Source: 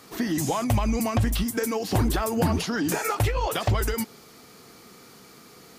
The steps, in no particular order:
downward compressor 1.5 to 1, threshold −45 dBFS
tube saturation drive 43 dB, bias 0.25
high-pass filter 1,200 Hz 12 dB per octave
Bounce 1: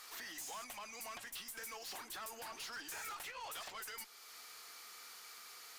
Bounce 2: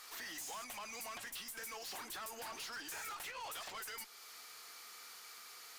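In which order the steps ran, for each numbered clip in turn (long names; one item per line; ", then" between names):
downward compressor, then high-pass filter, then tube saturation
high-pass filter, then downward compressor, then tube saturation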